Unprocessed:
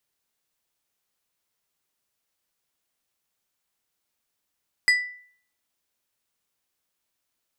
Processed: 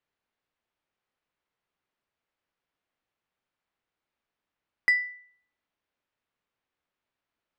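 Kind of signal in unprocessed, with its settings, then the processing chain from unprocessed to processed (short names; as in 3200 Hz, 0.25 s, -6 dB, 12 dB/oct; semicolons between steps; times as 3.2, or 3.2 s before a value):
glass hit plate, lowest mode 1980 Hz, decay 0.54 s, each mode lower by 7.5 dB, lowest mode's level -13 dB
LPF 2500 Hz 12 dB/oct; notches 50/100/150/200 Hz; hard clip -15 dBFS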